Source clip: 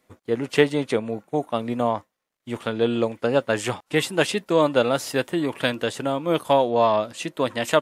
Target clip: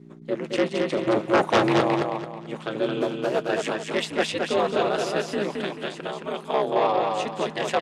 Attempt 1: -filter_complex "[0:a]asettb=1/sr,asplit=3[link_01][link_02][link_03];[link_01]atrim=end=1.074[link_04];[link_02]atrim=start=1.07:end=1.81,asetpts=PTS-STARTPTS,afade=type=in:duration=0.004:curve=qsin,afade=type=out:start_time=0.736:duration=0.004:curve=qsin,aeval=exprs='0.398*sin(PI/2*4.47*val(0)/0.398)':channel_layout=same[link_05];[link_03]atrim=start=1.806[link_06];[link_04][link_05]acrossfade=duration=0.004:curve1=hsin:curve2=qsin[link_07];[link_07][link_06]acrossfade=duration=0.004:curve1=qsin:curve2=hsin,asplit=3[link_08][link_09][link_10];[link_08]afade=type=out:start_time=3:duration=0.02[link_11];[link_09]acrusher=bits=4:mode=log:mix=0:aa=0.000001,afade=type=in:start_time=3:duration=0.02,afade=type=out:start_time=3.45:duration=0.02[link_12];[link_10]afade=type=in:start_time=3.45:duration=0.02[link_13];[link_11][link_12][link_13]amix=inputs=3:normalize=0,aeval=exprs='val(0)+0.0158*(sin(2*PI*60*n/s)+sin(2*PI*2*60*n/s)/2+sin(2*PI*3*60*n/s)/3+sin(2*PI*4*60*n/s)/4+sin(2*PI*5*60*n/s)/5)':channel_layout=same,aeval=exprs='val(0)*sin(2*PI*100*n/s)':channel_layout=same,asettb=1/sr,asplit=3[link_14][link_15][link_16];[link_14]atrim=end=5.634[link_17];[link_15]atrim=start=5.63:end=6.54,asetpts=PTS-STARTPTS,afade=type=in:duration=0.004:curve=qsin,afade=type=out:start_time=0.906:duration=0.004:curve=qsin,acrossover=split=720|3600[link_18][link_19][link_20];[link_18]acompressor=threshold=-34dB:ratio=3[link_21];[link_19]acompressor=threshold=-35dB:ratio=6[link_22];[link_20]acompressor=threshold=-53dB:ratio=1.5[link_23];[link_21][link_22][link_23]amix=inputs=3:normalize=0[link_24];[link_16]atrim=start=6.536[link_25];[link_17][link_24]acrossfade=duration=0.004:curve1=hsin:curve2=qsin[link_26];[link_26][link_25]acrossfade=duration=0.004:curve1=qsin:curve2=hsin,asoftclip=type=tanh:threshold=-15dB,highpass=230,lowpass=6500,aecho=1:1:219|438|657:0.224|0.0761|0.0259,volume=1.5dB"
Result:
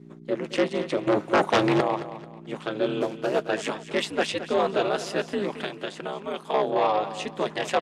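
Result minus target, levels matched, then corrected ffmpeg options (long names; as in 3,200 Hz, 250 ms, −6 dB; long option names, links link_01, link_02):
echo-to-direct −9.5 dB
-filter_complex "[0:a]asettb=1/sr,asplit=3[link_01][link_02][link_03];[link_01]atrim=end=1.074[link_04];[link_02]atrim=start=1.07:end=1.81,asetpts=PTS-STARTPTS,afade=type=in:duration=0.004:curve=qsin,afade=type=out:start_time=0.736:duration=0.004:curve=qsin,aeval=exprs='0.398*sin(PI/2*4.47*val(0)/0.398)':channel_layout=same[link_05];[link_03]atrim=start=1.806[link_06];[link_04][link_05]acrossfade=duration=0.004:curve1=hsin:curve2=qsin[link_07];[link_07][link_06]acrossfade=duration=0.004:curve1=qsin:curve2=hsin,asplit=3[link_08][link_09][link_10];[link_08]afade=type=out:start_time=3:duration=0.02[link_11];[link_09]acrusher=bits=4:mode=log:mix=0:aa=0.000001,afade=type=in:start_time=3:duration=0.02,afade=type=out:start_time=3.45:duration=0.02[link_12];[link_10]afade=type=in:start_time=3.45:duration=0.02[link_13];[link_11][link_12][link_13]amix=inputs=3:normalize=0,aeval=exprs='val(0)+0.0158*(sin(2*PI*60*n/s)+sin(2*PI*2*60*n/s)/2+sin(2*PI*3*60*n/s)/3+sin(2*PI*4*60*n/s)/4+sin(2*PI*5*60*n/s)/5)':channel_layout=same,aeval=exprs='val(0)*sin(2*PI*100*n/s)':channel_layout=same,asettb=1/sr,asplit=3[link_14][link_15][link_16];[link_14]atrim=end=5.634[link_17];[link_15]atrim=start=5.63:end=6.54,asetpts=PTS-STARTPTS,afade=type=in:duration=0.004:curve=qsin,afade=type=out:start_time=0.906:duration=0.004:curve=qsin,acrossover=split=720|3600[link_18][link_19][link_20];[link_18]acompressor=threshold=-34dB:ratio=3[link_21];[link_19]acompressor=threshold=-35dB:ratio=6[link_22];[link_20]acompressor=threshold=-53dB:ratio=1.5[link_23];[link_21][link_22][link_23]amix=inputs=3:normalize=0[link_24];[link_16]atrim=start=6.536[link_25];[link_17][link_24]acrossfade=duration=0.004:curve1=hsin:curve2=qsin[link_26];[link_26][link_25]acrossfade=duration=0.004:curve1=qsin:curve2=hsin,asoftclip=type=tanh:threshold=-15dB,highpass=230,lowpass=6500,aecho=1:1:219|438|657|876:0.668|0.227|0.0773|0.0263,volume=1.5dB"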